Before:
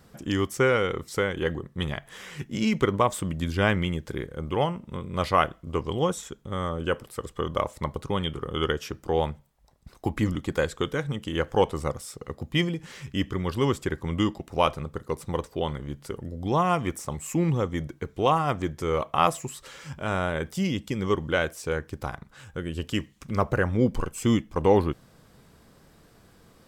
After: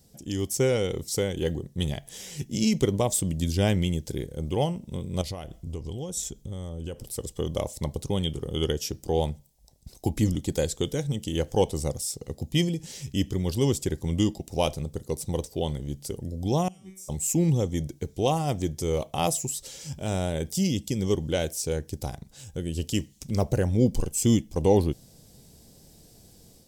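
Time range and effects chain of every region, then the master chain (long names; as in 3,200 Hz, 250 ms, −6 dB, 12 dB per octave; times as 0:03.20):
0:05.21–0:07.17: low-shelf EQ 71 Hz +11.5 dB + downward compressor 3 to 1, threshold −34 dBFS
0:16.68–0:17.09: downward compressor 12 to 1, threshold −27 dBFS + tuned comb filter 190 Hz, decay 0.43 s, mix 100%
whole clip: drawn EQ curve 110 Hz 0 dB, 780 Hz −5 dB, 1,200 Hz −20 dB, 5,600 Hz +7 dB; automatic gain control gain up to 6.5 dB; level −3.5 dB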